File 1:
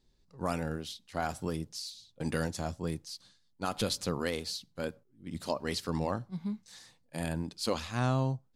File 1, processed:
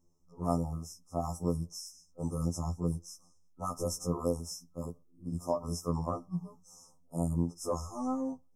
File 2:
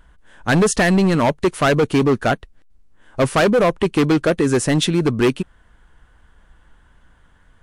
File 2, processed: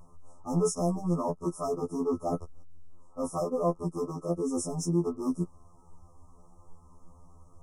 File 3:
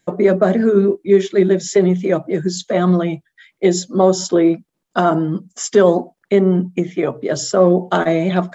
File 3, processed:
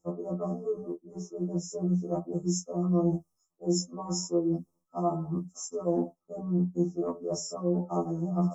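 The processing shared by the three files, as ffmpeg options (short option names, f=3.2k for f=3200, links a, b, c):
-af "afftfilt=real='re*(1-between(b*sr/4096,1300,5100))':imag='im*(1-between(b*sr/4096,1300,5100))':win_size=4096:overlap=0.75,areverse,acompressor=threshold=-28dB:ratio=12,areverse,afftfilt=real='re*2*eq(mod(b,4),0)':imag='im*2*eq(mod(b,4),0)':win_size=2048:overlap=0.75,volume=3dB"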